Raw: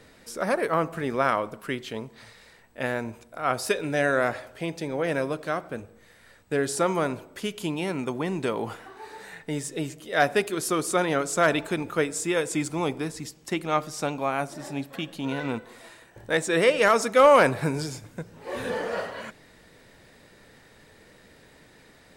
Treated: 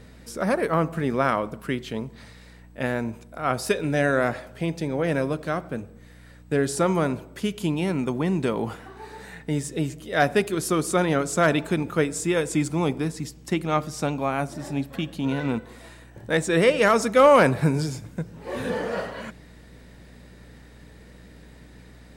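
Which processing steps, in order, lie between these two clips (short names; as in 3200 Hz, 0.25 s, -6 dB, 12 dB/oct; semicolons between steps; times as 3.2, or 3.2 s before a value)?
bell 170 Hz +7.5 dB 1.7 oct; hum 60 Hz, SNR 24 dB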